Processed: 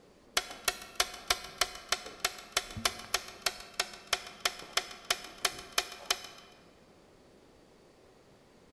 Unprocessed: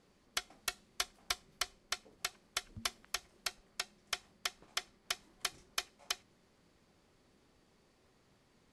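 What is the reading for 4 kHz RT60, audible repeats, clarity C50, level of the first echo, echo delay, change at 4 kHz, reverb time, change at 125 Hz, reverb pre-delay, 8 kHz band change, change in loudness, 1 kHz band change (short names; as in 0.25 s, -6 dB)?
1.2 s, 1, 12.0 dB, -19.5 dB, 0.138 s, +7.0 dB, 2.1 s, +7.5 dB, 26 ms, +6.5 dB, +7.0 dB, +9.0 dB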